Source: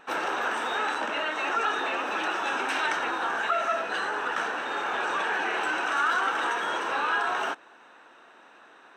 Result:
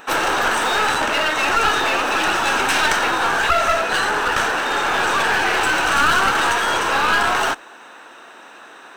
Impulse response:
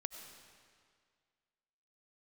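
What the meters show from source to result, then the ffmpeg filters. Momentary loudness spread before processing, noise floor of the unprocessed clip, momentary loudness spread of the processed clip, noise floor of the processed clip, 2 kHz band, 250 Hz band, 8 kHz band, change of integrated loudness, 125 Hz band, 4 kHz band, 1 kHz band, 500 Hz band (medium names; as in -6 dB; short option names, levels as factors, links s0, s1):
4 LU, -54 dBFS, 3 LU, -42 dBFS, +10.0 dB, +10.5 dB, +17.0 dB, +10.0 dB, no reading, +13.0 dB, +9.5 dB, +9.5 dB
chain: -filter_complex "[0:a]highshelf=f=5700:g=8.5,aeval=exprs='clip(val(0),-1,0.0335)':c=same,asplit=2[s0][s1];[1:a]atrim=start_sample=2205,atrim=end_sample=3528,highshelf=f=5400:g=9.5[s2];[s1][s2]afir=irnorm=-1:irlink=0,volume=0.562[s3];[s0][s3]amix=inputs=2:normalize=0,volume=2.51"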